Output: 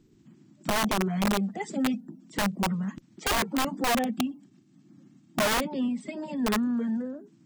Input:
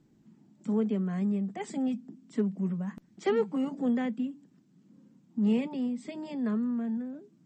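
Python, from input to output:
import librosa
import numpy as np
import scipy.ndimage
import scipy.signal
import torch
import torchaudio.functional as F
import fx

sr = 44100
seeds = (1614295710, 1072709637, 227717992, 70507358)

y = fx.spec_quant(x, sr, step_db=30)
y = fx.notch_comb(y, sr, f0_hz=490.0, at=(4.04, 5.47))
y = (np.mod(10.0 ** (24.0 / 20.0) * y + 1.0, 2.0) - 1.0) / 10.0 ** (24.0 / 20.0)
y = y * librosa.db_to_amplitude(4.0)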